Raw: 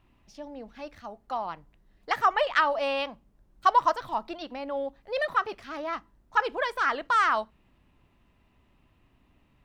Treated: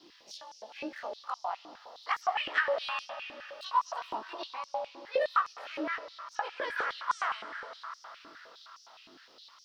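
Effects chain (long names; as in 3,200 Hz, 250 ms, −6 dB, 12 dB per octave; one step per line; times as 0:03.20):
every overlapping window played backwards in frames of 46 ms
dynamic equaliser 2,600 Hz, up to +5 dB, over −43 dBFS, Q 1
downward compressor 2 to 1, threshold −54 dBFS, peak gain reduction 19 dB
noise in a band 2,900–5,500 Hz −71 dBFS
convolution reverb RT60 4.7 s, pre-delay 48 ms, DRR 9 dB
high-pass on a step sequencer 9.7 Hz 320–5,800 Hz
level +7.5 dB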